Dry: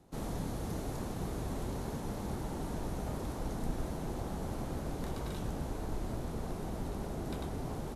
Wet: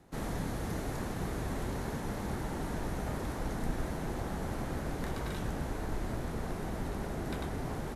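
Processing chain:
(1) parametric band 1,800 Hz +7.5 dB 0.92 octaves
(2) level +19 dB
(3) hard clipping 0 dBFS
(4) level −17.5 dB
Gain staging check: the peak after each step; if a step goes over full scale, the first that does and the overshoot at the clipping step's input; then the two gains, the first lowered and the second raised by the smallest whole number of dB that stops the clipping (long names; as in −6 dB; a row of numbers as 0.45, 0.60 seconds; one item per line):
−22.5, −3.5, −3.5, −21.0 dBFS
no step passes full scale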